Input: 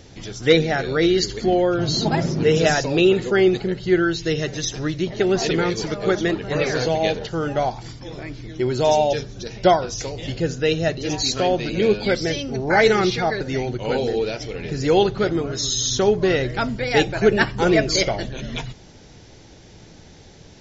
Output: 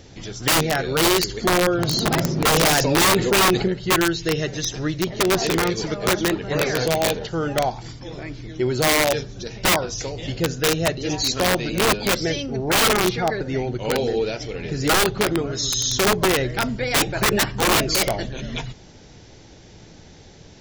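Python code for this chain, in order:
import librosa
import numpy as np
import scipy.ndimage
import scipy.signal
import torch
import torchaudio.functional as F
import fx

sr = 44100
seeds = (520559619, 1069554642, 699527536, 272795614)

y = fx.high_shelf(x, sr, hz=2800.0, db=-7.5, at=(12.46, 13.75))
y = (np.mod(10.0 ** (12.0 / 20.0) * y + 1.0, 2.0) - 1.0) / 10.0 ** (12.0 / 20.0)
y = fx.env_flatten(y, sr, amount_pct=50, at=(2.54, 3.68))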